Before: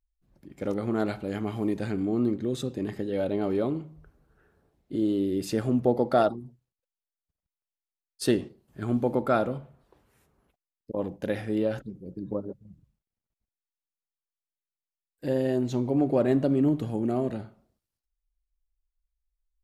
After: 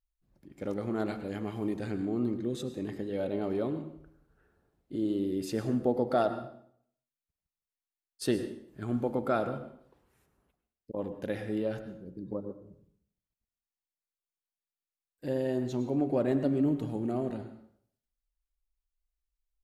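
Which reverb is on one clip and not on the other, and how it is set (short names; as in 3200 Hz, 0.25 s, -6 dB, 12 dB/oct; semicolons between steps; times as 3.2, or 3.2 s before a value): plate-style reverb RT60 0.62 s, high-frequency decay 0.85×, pre-delay 90 ms, DRR 10 dB; gain -5 dB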